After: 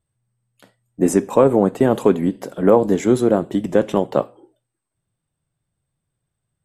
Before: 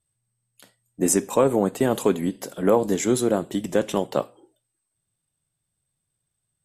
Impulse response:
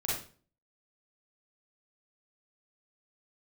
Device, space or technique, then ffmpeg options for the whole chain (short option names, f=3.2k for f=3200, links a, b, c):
through cloth: -af "highshelf=f=2.9k:g=-14,volume=6dB"